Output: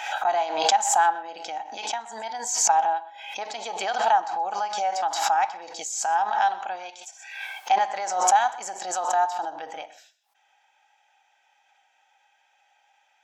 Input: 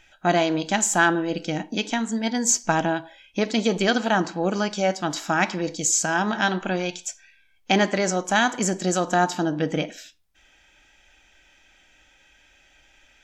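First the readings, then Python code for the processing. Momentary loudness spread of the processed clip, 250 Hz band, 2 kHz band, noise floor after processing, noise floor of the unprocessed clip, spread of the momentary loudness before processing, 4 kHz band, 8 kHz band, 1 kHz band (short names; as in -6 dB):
15 LU, under -20 dB, -7.0 dB, -66 dBFS, -59 dBFS, 8 LU, -3.5 dB, -2.5 dB, +4.5 dB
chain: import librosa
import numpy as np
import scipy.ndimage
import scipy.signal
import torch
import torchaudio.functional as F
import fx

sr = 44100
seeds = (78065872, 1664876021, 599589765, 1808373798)

p1 = fx.highpass_res(x, sr, hz=810.0, q=8.8)
p2 = p1 + fx.echo_single(p1, sr, ms=126, db=-18.0, dry=0)
p3 = fx.pre_swell(p2, sr, db_per_s=57.0)
y = p3 * librosa.db_to_amplitude(-11.5)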